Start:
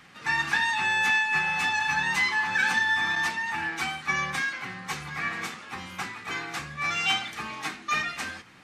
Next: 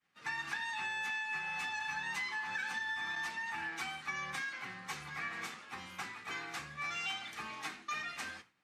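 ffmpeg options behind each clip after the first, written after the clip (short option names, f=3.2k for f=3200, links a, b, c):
-af "agate=range=-33dB:threshold=-41dB:ratio=3:detection=peak,lowshelf=f=290:g=-5,acompressor=threshold=-28dB:ratio=6,volume=-7.5dB"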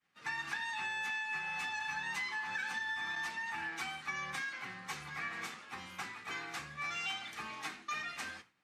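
-af anull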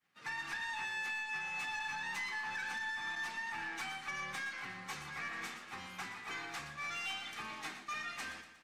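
-filter_complex "[0:a]aeval=exprs='(tanh(50.1*val(0)+0.1)-tanh(0.1))/50.1':c=same,asplit=2[a][b];[b]aecho=0:1:119|238|357|476|595:0.282|0.144|0.0733|0.0374|0.0191[c];[a][c]amix=inputs=2:normalize=0"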